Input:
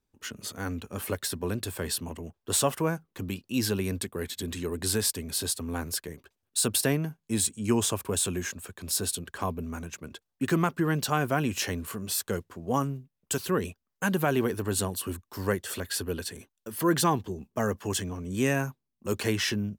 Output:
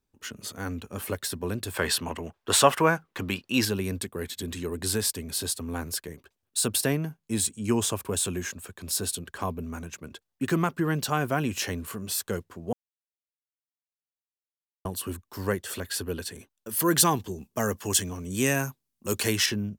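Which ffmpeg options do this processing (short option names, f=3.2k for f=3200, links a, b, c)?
-filter_complex "[0:a]asettb=1/sr,asplit=3[a][b][c];[a]atrim=end=1.744[d];[b]atrim=start=1.74:end=3.65,asetpts=PTS-STARTPTS,afade=t=in:d=0.004:c=qsin,afade=t=out:st=1.906:d=0.004:c=qsin,equalizer=f=1.6k:w=0.34:g=11.5[e];[c]atrim=start=3.646[f];[d][e]acrossfade=d=0.004:c1=hsin:c2=qsin[g];[g][f]acrossfade=d=0.004:c1=qsin:c2=hsin,asettb=1/sr,asplit=3[h][i][j];[h]atrim=end=16.694[k];[i]atrim=start=16.69:end=19.46,asetpts=PTS-STARTPTS,afade=t=in:d=0.004:c=qsin,afade=t=out:st=2.766:d=0.004:c=qsin,equalizer=f=13k:t=o:w=2.5:g=10[l];[j]atrim=start=19.456[m];[k][l]acrossfade=d=0.004:c1=hsin:c2=qsin[n];[n][m]acrossfade=d=0.004:c1=qsin:c2=hsin,asplit=3[o][p][q];[o]atrim=end=12.73,asetpts=PTS-STARTPTS,afade=t=out:st=12.726:d=0.004:c=hsin[r];[p]atrim=start=12.73:end=14.85,asetpts=PTS-STARTPTS,volume=0[s];[q]atrim=start=14.85,asetpts=PTS-STARTPTS,afade=t=in:d=0.004:c=hsin[t];[r][s][t]concat=n=3:v=0:a=1"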